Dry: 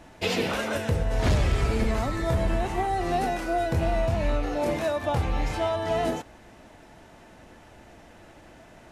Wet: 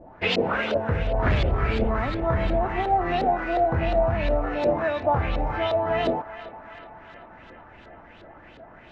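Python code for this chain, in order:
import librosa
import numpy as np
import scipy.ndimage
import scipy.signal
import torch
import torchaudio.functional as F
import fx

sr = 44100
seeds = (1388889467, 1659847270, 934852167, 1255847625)

y = fx.filter_lfo_lowpass(x, sr, shape='saw_up', hz=2.8, low_hz=490.0, high_hz=4100.0, q=2.7)
y = fx.echo_banded(y, sr, ms=385, feedback_pct=76, hz=1500.0, wet_db=-12.5)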